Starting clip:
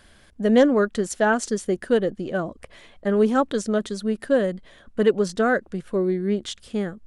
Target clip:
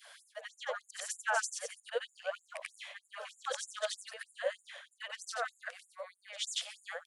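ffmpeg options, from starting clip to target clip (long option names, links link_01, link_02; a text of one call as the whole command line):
ffmpeg -i in.wav -filter_complex "[0:a]afftfilt=real='re':imag='-im':win_size=8192:overlap=0.75,acrossover=split=290[link_01][link_02];[link_01]alimiter=level_in=5dB:limit=-24dB:level=0:latency=1:release=101,volume=-5dB[link_03];[link_03][link_02]amix=inputs=2:normalize=0,bandreject=frequency=147.6:width_type=h:width=4,bandreject=frequency=295.2:width_type=h:width=4,areverse,acompressor=threshold=-33dB:ratio=12,areverse,adynamicequalizer=threshold=0.001:dfrequency=2500:dqfactor=2.1:tfrequency=2500:tqfactor=2.1:attack=5:release=100:ratio=0.375:range=3:mode=boostabove:tftype=bell,afftfilt=real='re*gte(b*sr/1024,460*pow(6900/460,0.5+0.5*sin(2*PI*3.2*pts/sr)))':imag='im*gte(b*sr/1024,460*pow(6900/460,0.5+0.5*sin(2*PI*3.2*pts/sr)))':win_size=1024:overlap=0.75,volume=6.5dB" out.wav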